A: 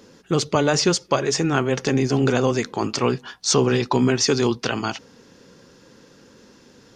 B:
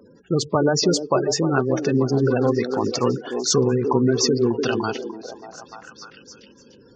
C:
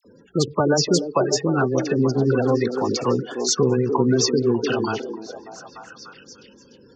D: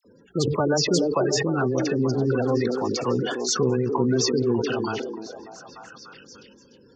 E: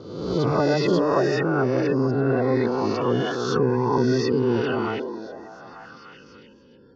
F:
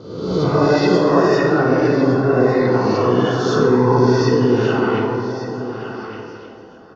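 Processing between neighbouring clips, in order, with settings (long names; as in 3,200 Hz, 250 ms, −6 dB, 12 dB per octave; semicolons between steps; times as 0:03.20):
gate on every frequency bin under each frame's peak −15 dB strong; echo through a band-pass that steps 296 ms, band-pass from 350 Hz, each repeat 0.7 octaves, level −4 dB
all-pass dispersion lows, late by 50 ms, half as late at 1,800 Hz
level that may fall only so fast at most 31 dB per second; level −4 dB
peak hold with a rise ahead of every peak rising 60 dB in 1.09 s; high-frequency loss of the air 300 metres
single-tap delay 1,162 ms −12 dB; dense smooth reverb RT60 1.8 s, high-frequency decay 0.55×, DRR −2 dB; level +2 dB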